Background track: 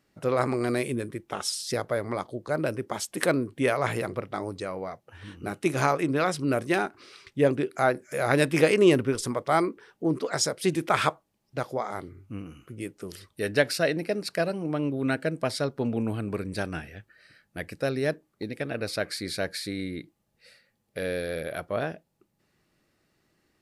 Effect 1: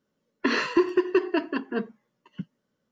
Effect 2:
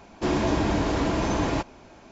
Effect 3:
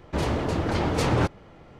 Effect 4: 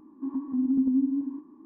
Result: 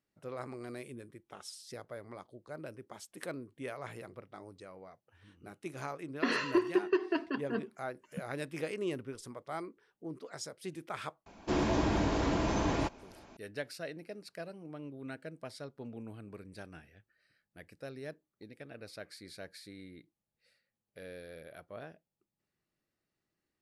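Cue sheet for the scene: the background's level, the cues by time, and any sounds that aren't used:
background track -17 dB
5.78 s: add 1 -7 dB
11.26 s: add 2 -6 dB
not used: 3, 4

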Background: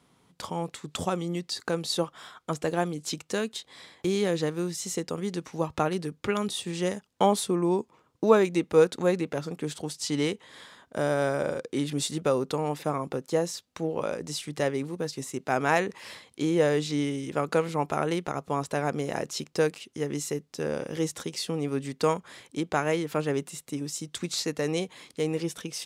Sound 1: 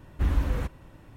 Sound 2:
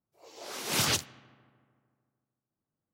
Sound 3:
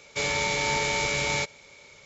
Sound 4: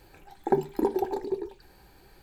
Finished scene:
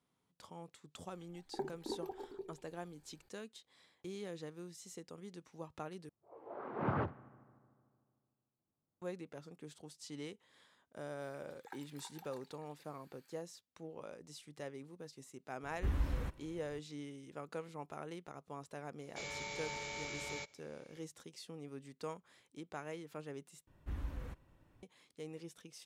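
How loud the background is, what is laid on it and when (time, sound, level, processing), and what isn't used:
background -19 dB
1.07 s: add 4 -17 dB
6.09 s: replace with 2 -1.5 dB + low-pass 1.3 kHz 24 dB/octave
11.20 s: add 4 -10.5 dB + high-pass 1.2 kHz 24 dB/octave
15.63 s: add 1 -10 dB
19.00 s: add 3 -17.5 dB
23.67 s: replace with 1 -17 dB

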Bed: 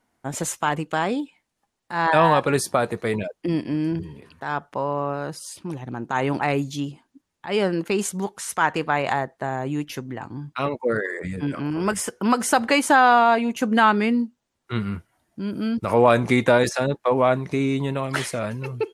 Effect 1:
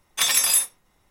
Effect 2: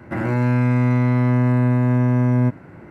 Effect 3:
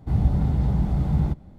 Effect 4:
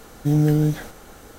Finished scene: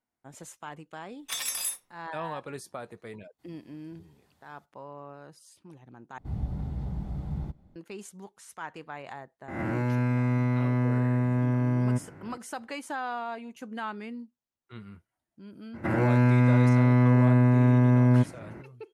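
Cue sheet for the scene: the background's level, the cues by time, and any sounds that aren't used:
bed -18.5 dB
1.11 s: add 1 -12.5 dB
3.32 s: add 3 -16 dB + differentiator
6.18 s: replace with 3 -12 dB
9.48 s: add 2 -8.5 dB + reverse spectral sustain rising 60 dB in 0.71 s
15.73 s: add 2 -3 dB, fades 0.02 s
not used: 4

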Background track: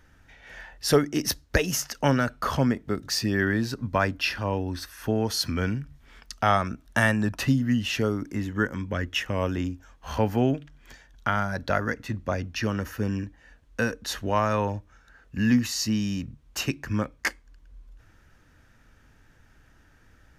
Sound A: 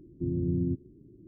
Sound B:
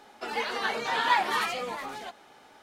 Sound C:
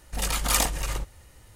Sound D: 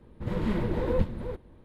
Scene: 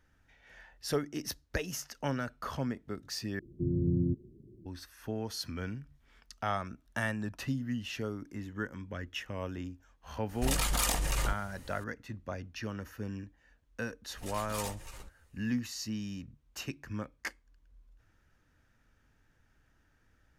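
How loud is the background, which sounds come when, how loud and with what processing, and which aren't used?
background track -11.5 dB
3.39 s: replace with A + band-stop 290 Hz, Q 5.1
10.29 s: add C + compression 5:1, threshold -25 dBFS
14.04 s: add C -13.5 dB + three-phase chorus
not used: B, D

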